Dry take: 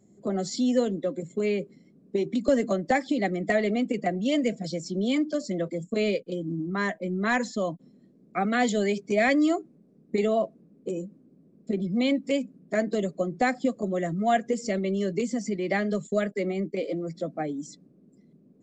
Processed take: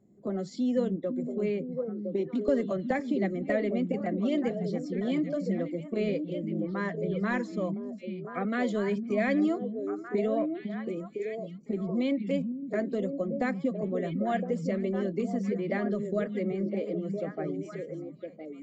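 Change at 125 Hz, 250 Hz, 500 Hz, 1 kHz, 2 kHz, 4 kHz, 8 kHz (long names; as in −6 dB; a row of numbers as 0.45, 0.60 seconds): −1.0 dB, −2.0 dB, −3.0 dB, −7.5 dB, −7.0 dB, −10.5 dB, below −15 dB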